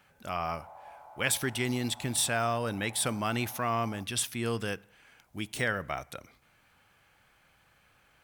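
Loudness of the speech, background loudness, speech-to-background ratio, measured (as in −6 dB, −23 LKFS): −31.5 LKFS, −51.0 LKFS, 19.5 dB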